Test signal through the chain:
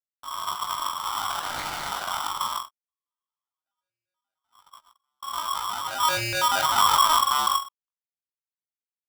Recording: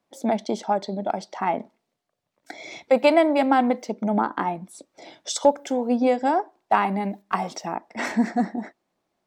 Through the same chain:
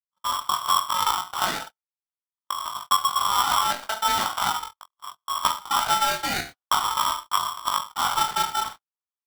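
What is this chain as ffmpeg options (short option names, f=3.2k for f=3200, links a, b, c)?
-filter_complex "[0:a]highpass=180,aresample=8000,acrusher=samples=16:mix=1:aa=0.000001:lfo=1:lforange=25.6:lforate=0.44,aresample=44100,acompressor=threshold=-26dB:ratio=8,equalizer=f=660:t=o:w=0.79:g=-13,asplit=2[a][b];[b]aecho=0:1:20|42|66.2|92.82|122.1:0.631|0.398|0.251|0.158|0.1[c];[a][c]amix=inputs=2:normalize=0,agate=range=-38dB:threshold=-42dB:ratio=16:detection=peak,dynaudnorm=f=150:g=5:m=10dB,equalizer=f=1.5k:t=o:w=0.33:g=-14.5,aeval=exprs='val(0)*sgn(sin(2*PI*1100*n/s))':c=same,volume=-4dB"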